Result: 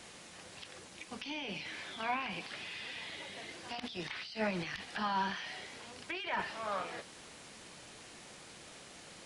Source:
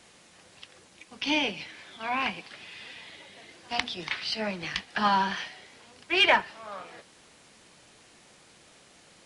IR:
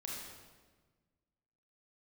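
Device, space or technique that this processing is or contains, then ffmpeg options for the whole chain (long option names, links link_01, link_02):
de-esser from a sidechain: -filter_complex "[0:a]asplit=2[link_01][link_02];[link_02]highpass=4400,apad=whole_len=408263[link_03];[link_01][link_03]sidechaincompress=threshold=-53dB:ratio=16:attack=4.6:release=27,volume=3.5dB"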